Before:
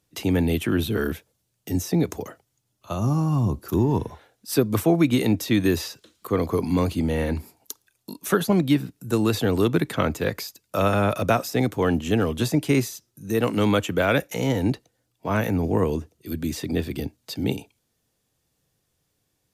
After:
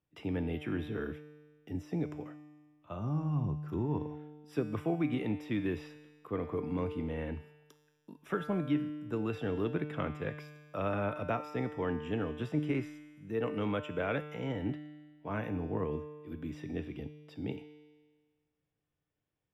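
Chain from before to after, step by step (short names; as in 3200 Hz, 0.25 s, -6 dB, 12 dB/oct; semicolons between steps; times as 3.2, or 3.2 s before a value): polynomial smoothing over 25 samples; resonator 150 Hz, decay 1.5 s, mix 80%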